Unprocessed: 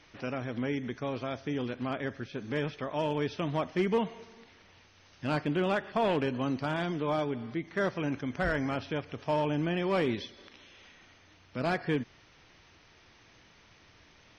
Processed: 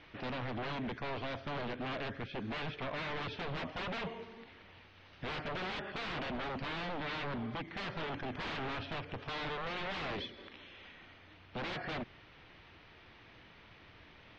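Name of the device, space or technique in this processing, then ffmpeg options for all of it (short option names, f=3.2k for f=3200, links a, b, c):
synthesiser wavefolder: -af "aeval=exprs='0.0168*(abs(mod(val(0)/0.0168+3,4)-2)-1)':c=same,lowpass=f=3.8k:w=0.5412,lowpass=f=3.8k:w=1.3066,volume=2dB"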